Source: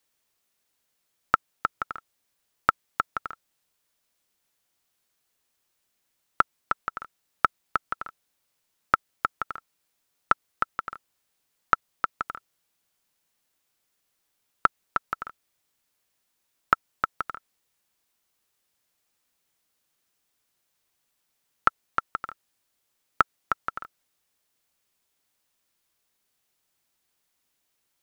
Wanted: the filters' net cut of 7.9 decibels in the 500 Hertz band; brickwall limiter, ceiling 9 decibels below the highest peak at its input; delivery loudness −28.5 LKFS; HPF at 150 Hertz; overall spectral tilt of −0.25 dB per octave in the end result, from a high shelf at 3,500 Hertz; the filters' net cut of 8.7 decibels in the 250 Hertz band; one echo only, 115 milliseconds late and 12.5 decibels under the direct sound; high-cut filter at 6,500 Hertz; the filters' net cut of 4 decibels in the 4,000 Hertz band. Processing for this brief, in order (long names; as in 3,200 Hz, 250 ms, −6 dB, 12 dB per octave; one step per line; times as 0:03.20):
high-pass filter 150 Hz
low-pass filter 6,500 Hz
parametric band 250 Hz −8 dB
parametric band 500 Hz −8.5 dB
high-shelf EQ 3,500 Hz −3 dB
parametric band 4,000 Hz −3 dB
brickwall limiter −13.5 dBFS
single-tap delay 115 ms −12.5 dB
level +8.5 dB